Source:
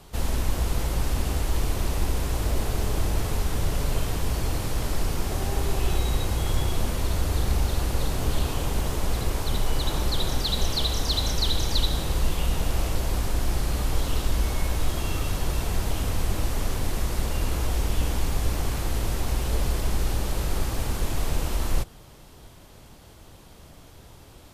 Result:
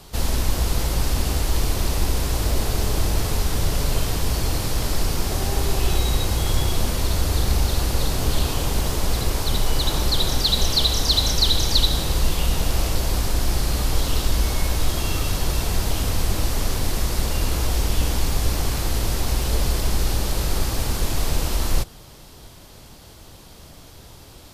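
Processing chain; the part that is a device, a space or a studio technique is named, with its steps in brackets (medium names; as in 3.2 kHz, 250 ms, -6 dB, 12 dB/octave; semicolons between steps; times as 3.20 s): presence and air boost (peaking EQ 4.7 kHz +5 dB 0.89 oct; treble shelf 9.3 kHz +5 dB); trim +3.5 dB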